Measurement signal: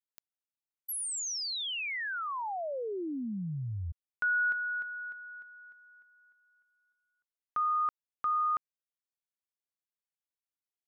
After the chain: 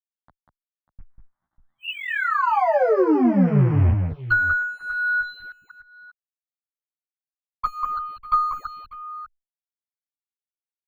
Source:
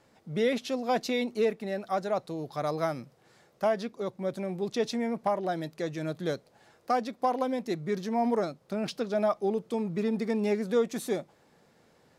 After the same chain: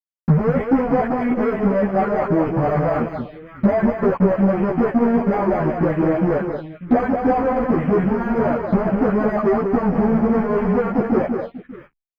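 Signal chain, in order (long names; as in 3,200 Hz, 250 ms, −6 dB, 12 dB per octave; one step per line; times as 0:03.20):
loose part that buzzes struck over −46 dBFS, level −38 dBFS
high-pass filter 74 Hz 12 dB per octave
all-pass dispersion highs, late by 102 ms, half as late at 620 Hz
fuzz pedal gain 46 dB, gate −47 dBFS
bad sample-rate conversion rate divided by 8×, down filtered, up hold
high-frequency loss of the air 400 metres
transient designer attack +7 dB, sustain −8 dB
on a send: multi-tap delay 193/594 ms −5.5/−15 dB
on the sum: phaser swept by the level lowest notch 420 Hz, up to 3,700 Hz, full sweep at −15.5 dBFS
parametric band 8,200 Hz −10 dB 1.5 octaves
barber-pole flanger 11.7 ms +1.1 Hz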